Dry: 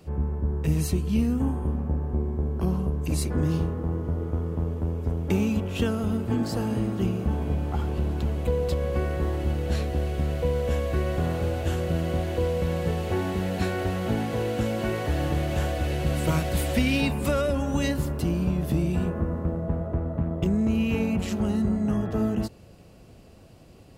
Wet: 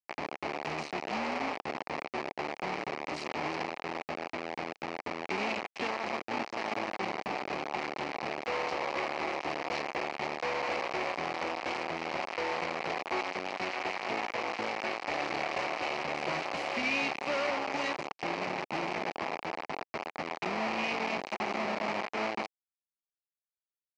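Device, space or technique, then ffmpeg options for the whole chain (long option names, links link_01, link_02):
hand-held game console: -af "acrusher=bits=3:mix=0:aa=0.000001,highpass=420,equalizer=frequency=470:width_type=q:width=4:gain=-4,equalizer=frequency=790:width_type=q:width=4:gain=4,equalizer=frequency=1500:width_type=q:width=4:gain=-6,equalizer=frequency=2300:width_type=q:width=4:gain=6,equalizer=frequency=3500:width_type=q:width=4:gain=-10,lowpass=frequency=4600:width=0.5412,lowpass=frequency=4600:width=1.3066,volume=-5dB"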